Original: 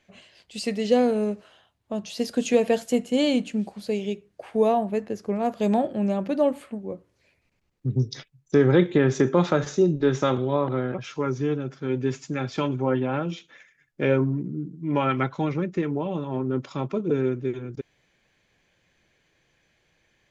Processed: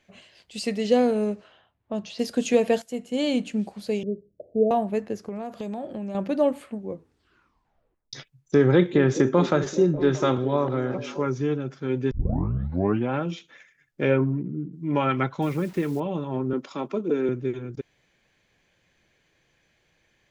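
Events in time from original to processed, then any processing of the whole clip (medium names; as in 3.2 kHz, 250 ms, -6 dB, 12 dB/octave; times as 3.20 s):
0.93–2.19 s: level-controlled noise filter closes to 2.1 kHz, open at -21.5 dBFS
2.82–3.48 s: fade in, from -13.5 dB
4.03–4.71 s: steep low-pass 640 Hz 96 dB/octave
5.23–6.15 s: compression 12:1, threshold -28 dBFS
6.89 s: tape stop 1.24 s
8.72–11.25 s: repeats whose band climbs or falls 209 ms, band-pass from 270 Hz, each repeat 0.7 oct, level -9.5 dB
12.11 s: tape start 0.98 s
14.10–14.73 s: resonant high shelf 3.8 kHz -9.5 dB, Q 1.5
15.42–16.00 s: word length cut 8-bit, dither none
16.53–17.29 s: high-pass 200 Hz 24 dB/octave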